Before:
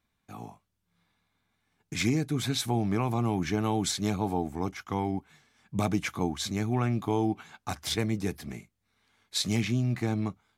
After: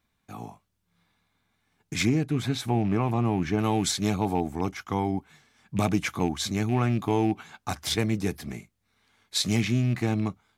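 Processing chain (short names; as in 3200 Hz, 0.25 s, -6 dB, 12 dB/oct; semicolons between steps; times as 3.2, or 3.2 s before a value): rattling part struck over -29 dBFS, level -35 dBFS; 2.05–3.59 high shelf 3000 Hz -10 dB; gain +3 dB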